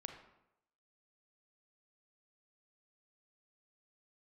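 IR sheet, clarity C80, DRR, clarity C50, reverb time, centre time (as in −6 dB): 9.0 dB, 5.0 dB, 6.5 dB, 0.85 s, 23 ms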